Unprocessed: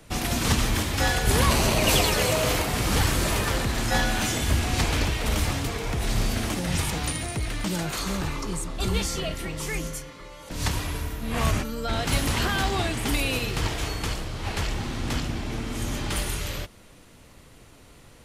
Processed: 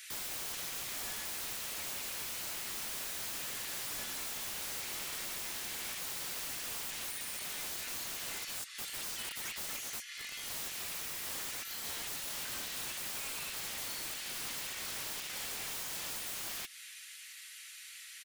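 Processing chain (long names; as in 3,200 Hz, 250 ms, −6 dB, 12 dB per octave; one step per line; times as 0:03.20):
Butterworth high-pass 1,700 Hz 36 dB per octave
high-shelf EQ 7,600 Hz +3 dB
comb filter 5.3 ms, depth 41%
downward compressor 16 to 1, threshold −41 dBFS, peak gain reduction 23 dB
wrap-around overflow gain 41.5 dB
level +6.5 dB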